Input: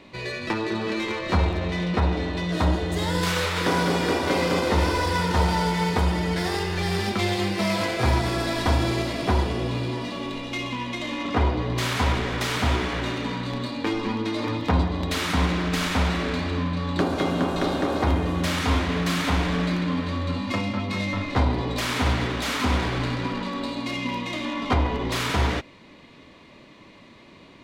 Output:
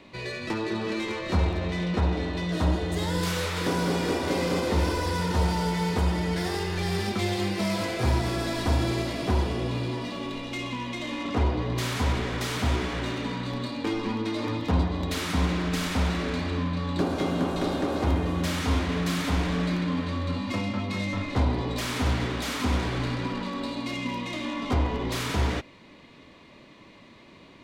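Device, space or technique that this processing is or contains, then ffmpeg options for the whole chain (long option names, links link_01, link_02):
one-band saturation: -filter_complex "[0:a]acrossover=split=540|5000[link_01][link_02][link_03];[link_02]asoftclip=type=tanh:threshold=-28dB[link_04];[link_01][link_04][link_03]amix=inputs=3:normalize=0,volume=-2dB"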